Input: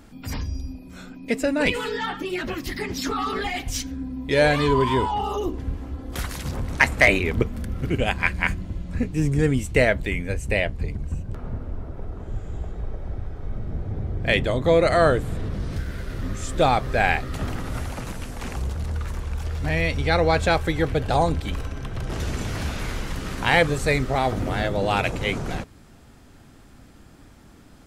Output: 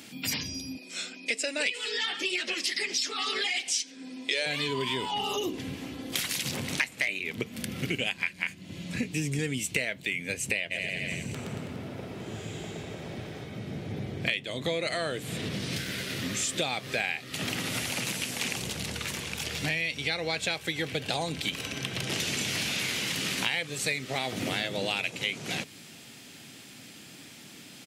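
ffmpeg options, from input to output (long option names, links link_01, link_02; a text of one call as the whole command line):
ffmpeg -i in.wav -filter_complex "[0:a]asettb=1/sr,asplit=3[link_01][link_02][link_03];[link_01]atrim=end=0.774[link_04];[link_02]atrim=start=0.77:end=4.46,asetpts=PTS-STARTPTS,afade=type=in:duration=0.004:curve=qsin,afade=type=out:start_time=3.686:duration=0.004:curve=qsin,highpass=frequency=260:width=0.5412,highpass=frequency=260:width=1.3066,equalizer=frequency=280:width_type=q:width=4:gain=-8,equalizer=frequency=920:width_type=q:width=4:gain=-4,equalizer=frequency=5200:width_type=q:width=4:gain=5,equalizer=frequency=8100:width_type=q:width=4:gain=5,lowpass=frequency=9800:width=0.5412,lowpass=frequency=9800:width=1.3066[link_05];[link_03]atrim=start=4.456[link_06];[link_04][link_05]acrossfade=duration=0.004:curve1=hsin:curve2=qsin[link_07];[link_07][link_06]acrossfade=duration=0.004:curve1=qsin:curve2=hsin,asplit=3[link_08][link_09][link_10];[link_08]afade=type=out:start_time=10.7:duration=0.02[link_11];[link_09]aecho=1:1:120|228|325.2|412.7|491.4|562.3:0.631|0.398|0.251|0.158|0.1|0.0631,afade=type=in:start_time=10.7:duration=0.02,afade=type=out:start_time=13.43:duration=0.02[link_12];[link_10]afade=type=in:start_time=13.43:duration=0.02[link_13];[link_11][link_12][link_13]amix=inputs=3:normalize=0,highpass=frequency=130:width=0.5412,highpass=frequency=130:width=1.3066,highshelf=frequency=1800:width_type=q:width=1.5:gain=11,acompressor=threshold=-27dB:ratio=8" out.wav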